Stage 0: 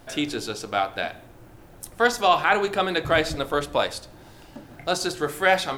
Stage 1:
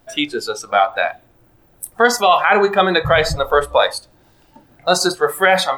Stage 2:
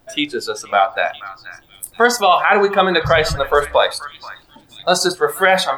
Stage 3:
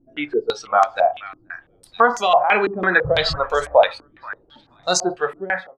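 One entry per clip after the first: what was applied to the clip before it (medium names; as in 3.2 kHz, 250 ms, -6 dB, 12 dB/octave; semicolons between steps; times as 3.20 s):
spectral noise reduction 17 dB; loudness maximiser +11.5 dB; trim -1 dB
repeats whose band climbs or falls 481 ms, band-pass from 1.5 kHz, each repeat 1.4 oct, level -12 dB
fade out at the end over 0.57 s; step-sequenced low-pass 6 Hz 300–6500 Hz; trim -6 dB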